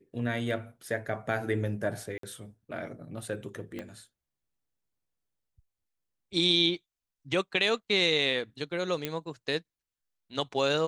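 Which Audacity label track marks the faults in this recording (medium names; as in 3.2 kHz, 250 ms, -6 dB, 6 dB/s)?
2.180000	2.230000	dropout 53 ms
3.790000	3.790000	pop -24 dBFS
9.050000	9.050000	pop -15 dBFS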